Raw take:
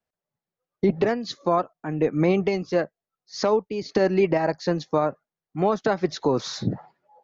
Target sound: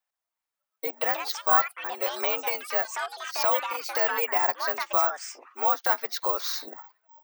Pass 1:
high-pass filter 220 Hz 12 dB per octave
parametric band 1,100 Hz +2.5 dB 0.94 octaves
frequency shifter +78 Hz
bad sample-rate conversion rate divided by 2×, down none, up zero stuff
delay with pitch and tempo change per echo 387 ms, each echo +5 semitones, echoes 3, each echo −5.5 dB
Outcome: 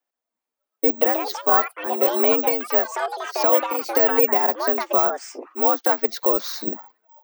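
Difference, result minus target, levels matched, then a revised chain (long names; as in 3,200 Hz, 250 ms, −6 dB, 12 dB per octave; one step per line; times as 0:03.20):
250 Hz band +13.0 dB
high-pass filter 800 Hz 12 dB per octave
parametric band 1,100 Hz +2.5 dB 0.94 octaves
frequency shifter +78 Hz
bad sample-rate conversion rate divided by 2×, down none, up zero stuff
delay with pitch and tempo change per echo 387 ms, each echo +5 semitones, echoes 3, each echo −5.5 dB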